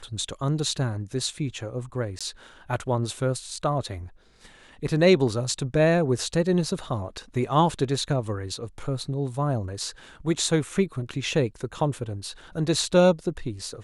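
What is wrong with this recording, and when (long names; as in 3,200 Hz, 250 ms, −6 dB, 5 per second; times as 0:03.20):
0:02.19–0:02.21: drop-out 16 ms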